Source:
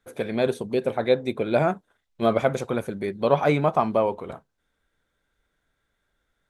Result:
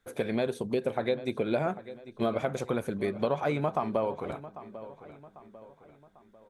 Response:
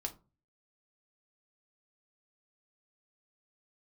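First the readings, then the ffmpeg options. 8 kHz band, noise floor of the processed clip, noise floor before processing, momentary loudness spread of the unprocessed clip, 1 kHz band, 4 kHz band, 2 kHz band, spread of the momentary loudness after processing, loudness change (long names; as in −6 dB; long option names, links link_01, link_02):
can't be measured, −60 dBFS, −76 dBFS, 9 LU, −7.5 dB, −6.0 dB, −6.5 dB, 16 LU, −7.0 dB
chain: -filter_complex "[0:a]acompressor=threshold=-25dB:ratio=6,asplit=2[link_01][link_02];[link_02]adelay=796,lowpass=frequency=4000:poles=1,volume=-15dB,asplit=2[link_03][link_04];[link_04]adelay=796,lowpass=frequency=4000:poles=1,volume=0.45,asplit=2[link_05][link_06];[link_06]adelay=796,lowpass=frequency=4000:poles=1,volume=0.45,asplit=2[link_07][link_08];[link_08]adelay=796,lowpass=frequency=4000:poles=1,volume=0.45[link_09];[link_03][link_05][link_07][link_09]amix=inputs=4:normalize=0[link_10];[link_01][link_10]amix=inputs=2:normalize=0"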